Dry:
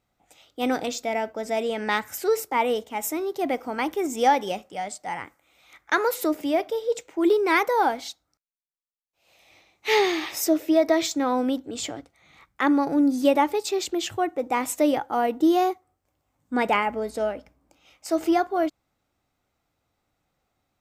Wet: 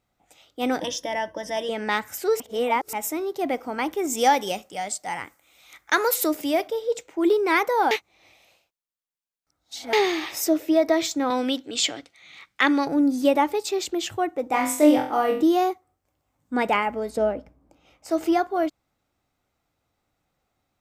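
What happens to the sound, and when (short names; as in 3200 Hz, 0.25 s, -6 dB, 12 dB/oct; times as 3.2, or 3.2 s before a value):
0.8–1.69 ripple EQ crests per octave 1.2, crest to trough 16 dB
2.4–2.93 reverse
4.07–6.68 high shelf 3500 Hz +9.5 dB
7.91–9.93 reverse
11.3–12.87 weighting filter D
14.51–15.43 flutter echo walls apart 4 m, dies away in 0.44 s
17.17–18.11 tilt shelf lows +6 dB, about 1200 Hz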